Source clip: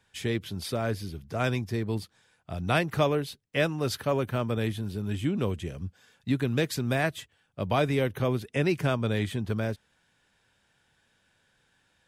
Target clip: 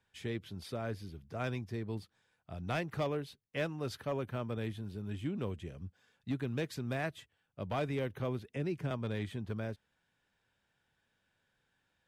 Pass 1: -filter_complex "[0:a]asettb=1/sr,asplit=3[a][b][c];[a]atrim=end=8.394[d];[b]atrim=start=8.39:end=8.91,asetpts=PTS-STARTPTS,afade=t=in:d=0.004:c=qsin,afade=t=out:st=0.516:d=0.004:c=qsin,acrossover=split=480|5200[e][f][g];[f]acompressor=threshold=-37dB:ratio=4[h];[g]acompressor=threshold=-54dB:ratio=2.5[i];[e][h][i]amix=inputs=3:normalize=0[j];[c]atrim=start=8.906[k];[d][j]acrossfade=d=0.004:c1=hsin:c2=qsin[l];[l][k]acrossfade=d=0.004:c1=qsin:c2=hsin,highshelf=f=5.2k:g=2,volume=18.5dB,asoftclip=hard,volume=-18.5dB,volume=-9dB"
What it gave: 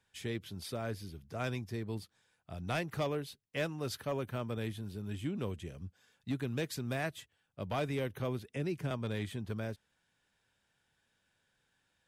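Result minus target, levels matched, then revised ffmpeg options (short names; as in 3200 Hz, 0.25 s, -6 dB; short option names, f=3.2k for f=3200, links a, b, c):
8000 Hz band +6.0 dB
-filter_complex "[0:a]asettb=1/sr,asplit=3[a][b][c];[a]atrim=end=8.394[d];[b]atrim=start=8.39:end=8.91,asetpts=PTS-STARTPTS,afade=t=in:d=0.004:c=qsin,afade=t=out:st=0.516:d=0.004:c=qsin,acrossover=split=480|5200[e][f][g];[f]acompressor=threshold=-37dB:ratio=4[h];[g]acompressor=threshold=-54dB:ratio=2.5[i];[e][h][i]amix=inputs=3:normalize=0[j];[c]atrim=start=8.906[k];[d][j]acrossfade=d=0.004:c1=hsin:c2=qsin[l];[l][k]acrossfade=d=0.004:c1=qsin:c2=hsin,highshelf=f=5.2k:g=-7.5,volume=18.5dB,asoftclip=hard,volume=-18.5dB,volume=-9dB"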